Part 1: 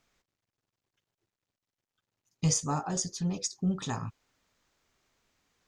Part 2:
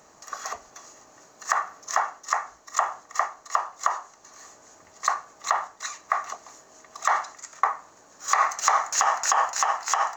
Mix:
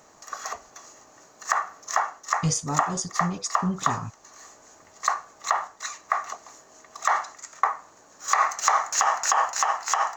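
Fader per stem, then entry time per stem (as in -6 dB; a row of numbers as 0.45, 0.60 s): +2.0, 0.0 dB; 0.00, 0.00 s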